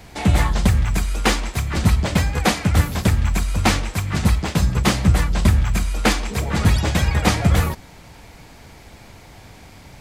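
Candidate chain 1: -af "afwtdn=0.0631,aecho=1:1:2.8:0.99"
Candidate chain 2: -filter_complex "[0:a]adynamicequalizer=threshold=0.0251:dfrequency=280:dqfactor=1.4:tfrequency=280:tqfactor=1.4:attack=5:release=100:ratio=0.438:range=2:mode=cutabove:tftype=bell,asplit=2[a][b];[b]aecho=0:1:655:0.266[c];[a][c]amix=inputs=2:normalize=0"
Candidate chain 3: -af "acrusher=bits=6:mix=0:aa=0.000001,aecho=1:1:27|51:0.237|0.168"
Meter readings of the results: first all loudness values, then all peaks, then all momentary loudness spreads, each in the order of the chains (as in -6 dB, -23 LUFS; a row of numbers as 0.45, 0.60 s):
-17.5, -20.0, -19.5 LUFS; -1.5, -3.0, -1.5 dBFS; 6, 5, 5 LU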